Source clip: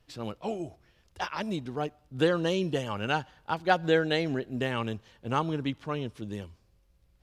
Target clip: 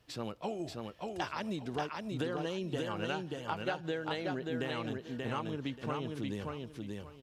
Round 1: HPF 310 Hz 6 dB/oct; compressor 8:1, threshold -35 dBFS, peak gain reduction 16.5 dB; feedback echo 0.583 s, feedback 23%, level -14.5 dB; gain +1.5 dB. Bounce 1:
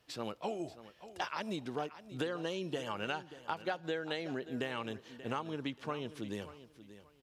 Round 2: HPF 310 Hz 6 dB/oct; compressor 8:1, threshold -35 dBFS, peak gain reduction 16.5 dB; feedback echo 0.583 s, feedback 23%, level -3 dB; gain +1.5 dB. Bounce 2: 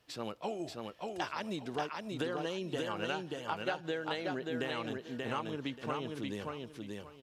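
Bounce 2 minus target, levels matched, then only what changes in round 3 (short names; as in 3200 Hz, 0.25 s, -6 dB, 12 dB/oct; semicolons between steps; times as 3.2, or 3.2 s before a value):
125 Hz band -4.0 dB
change: HPF 93 Hz 6 dB/oct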